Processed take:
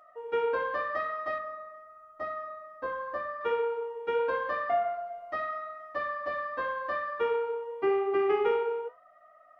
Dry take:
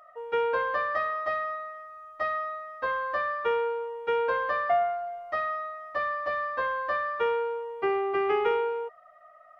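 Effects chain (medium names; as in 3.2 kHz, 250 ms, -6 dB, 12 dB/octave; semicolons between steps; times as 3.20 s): 1.38–3.41 s: peaking EQ 3.2 kHz -8.5 dB 2.1 oct; flange 0.85 Hz, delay 9.2 ms, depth 6.9 ms, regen -68%; peaking EQ 290 Hz +9.5 dB 0.95 oct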